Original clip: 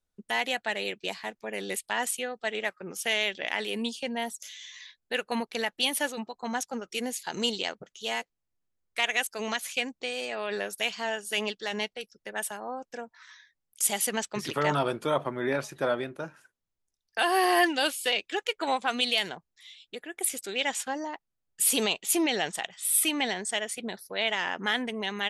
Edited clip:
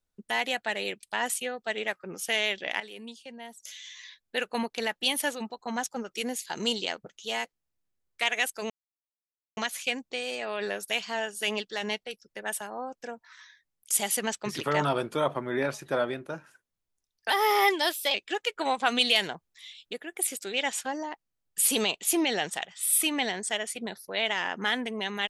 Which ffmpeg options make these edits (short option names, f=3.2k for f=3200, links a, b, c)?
-filter_complex "[0:a]asplit=9[a][b][c][d][e][f][g][h][i];[a]atrim=end=1.032[j];[b]atrim=start=1.798:end=3.572[k];[c]atrim=start=3.568:end=4.372,asetpts=PTS-STARTPTS,volume=-11.5dB[l];[d]atrim=start=4.368:end=9.47,asetpts=PTS-STARTPTS,afade=t=out:st=5.098:d=0.004:c=hsin,apad=pad_dur=0.87[m];[e]atrim=start=9.47:end=17.204,asetpts=PTS-STARTPTS,afade=t=in:d=0.004:c=hsin[n];[f]atrim=start=17.2:end=18.16,asetpts=PTS-STARTPTS,asetrate=50274,aresample=44100[o];[g]atrim=start=18.156:end=18.802[p];[h]atrim=start=18.798:end=20.002,asetpts=PTS-STARTPTS,volume=3dB[q];[i]atrim=start=19.998[r];[j][k]acrossfade=d=0.004:c1=hsin:c2=hsin[s];[s][l]acrossfade=d=0.004:c1=hsin:c2=hsin[t];[m][n]concat=n=2:v=0:a=1[u];[t][u]acrossfade=d=0.004:c1=hsin:c2=hsin[v];[v][o]acrossfade=d=0.004:c1=hsin:c2=hsin[w];[w][p]acrossfade=d=0.004:c1=hsin:c2=hsin[x];[x][q]acrossfade=d=0.004:c1=hsin:c2=hsin[y];[y][r]acrossfade=d=0.004:c1=hsin:c2=hsin"